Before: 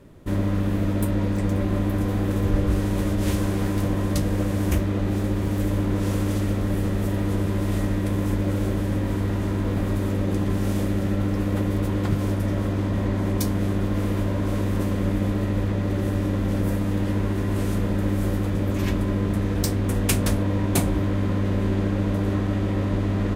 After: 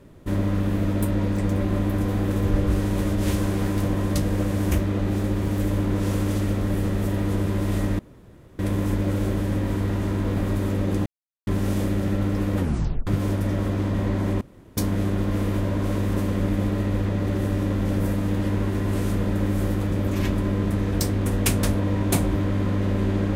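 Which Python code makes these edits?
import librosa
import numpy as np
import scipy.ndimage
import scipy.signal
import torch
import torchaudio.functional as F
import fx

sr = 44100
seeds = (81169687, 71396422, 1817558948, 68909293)

y = fx.edit(x, sr, fx.insert_room_tone(at_s=7.99, length_s=0.6),
    fx.insert_silence(at_s=10.46, length_s=0.41),
    fx.tape_stop(start_s=11.57, length_s=0.49),
    fx.insert_room_tone(at_s=13.4, length_s=0.36), tone=tone)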